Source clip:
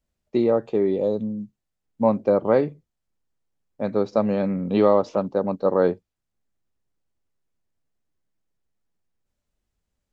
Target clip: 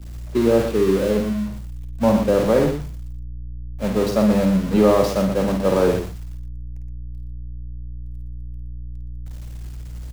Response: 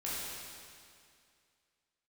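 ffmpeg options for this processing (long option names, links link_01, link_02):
-filter_complex "[0:a]aeval=exprs='val(0)+0.5*0.0841*sgn(val(0))':channel_layout=same,agate=range=-33dB:threshold=-18dB:ratio=3:detection=peak,aeval=exprs='val(0)+0.01*(sin(2*PI*60*n/s)+sin(2*PI*2*60*n/s)/2+sin(2*PI*3*60*n/s)/3+sin(2*PI*4*60*n/s)/4+sin(2*PI*5*60*n/s)/5)':channel_layout=same,aecho=1:1:52|119:0.501|0.398,acrossover=split=200|750[link_01][link_02][link_03];[link_01]acontrast=64[link_04];[link_04][link_02][link_03]amix=inputs=3:normalize=0,volume=-1.5dB"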